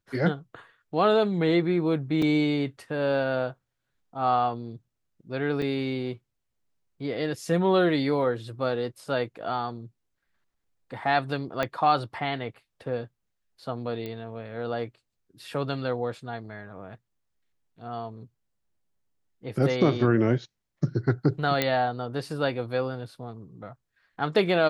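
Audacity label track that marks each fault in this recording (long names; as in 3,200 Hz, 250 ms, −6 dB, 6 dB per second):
2.220000	2.220000	drop-out 3.5 ms
5.620000	5.620000	drop-out 3.5 ms
11.630000	11.630000	click −13 dBFS
14.060000	14.060000	click −23 dBFS
21.620000	21.620000	click −9 dBFS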